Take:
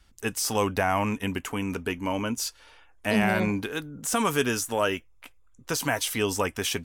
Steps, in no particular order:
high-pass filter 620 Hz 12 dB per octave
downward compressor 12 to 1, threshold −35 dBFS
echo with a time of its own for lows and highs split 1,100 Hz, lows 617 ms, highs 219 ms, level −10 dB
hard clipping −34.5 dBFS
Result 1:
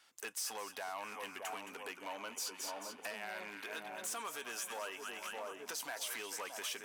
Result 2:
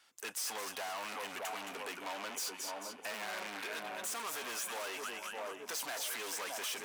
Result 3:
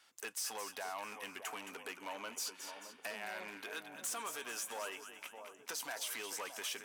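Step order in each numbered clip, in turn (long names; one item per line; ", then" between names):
echo with a time of its own for lows and highs, then downward compressor, then hard clipping, then high-pass filter
echo with a time of its own for lows and highs, then hard clipping, then high-pass filter, then downward compressor
downward compressor, then echo with a time of its own for lows and highs, then hard clipping, then high-pass filter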